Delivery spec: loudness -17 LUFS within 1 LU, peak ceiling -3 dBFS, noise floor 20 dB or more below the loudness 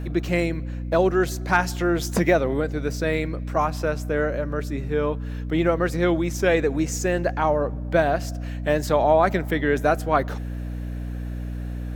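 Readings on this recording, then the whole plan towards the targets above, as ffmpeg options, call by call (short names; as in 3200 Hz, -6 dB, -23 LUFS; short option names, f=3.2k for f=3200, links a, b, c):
hum 60 Hz; harmonics up to 300 Hz; hum level -27 dBFS; loudness -23.5 LUFS; peak -5.0 dBFS; loudness target -17.0 LUFS
-> -af "bandreject=f=60:t=h:w=6,bandreject=f=120:t=h:w=6,bandreject=f=180:t=h:w=6,bandreject=f=240:t=h:w=6,bandreject=f=300:t=h:w=6"
-af "volume=6.5dB,alimiter=limit=-3dB:level=0:latency=1"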